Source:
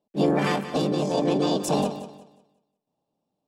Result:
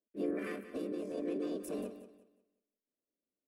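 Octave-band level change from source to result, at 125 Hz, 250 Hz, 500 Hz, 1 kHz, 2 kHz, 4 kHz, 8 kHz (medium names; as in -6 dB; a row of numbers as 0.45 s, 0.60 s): -25.0 dB, -13.5 dB, -14.0 dB, -25.0 dB, -15.0 dB, -25.0 dB, -19.0 dB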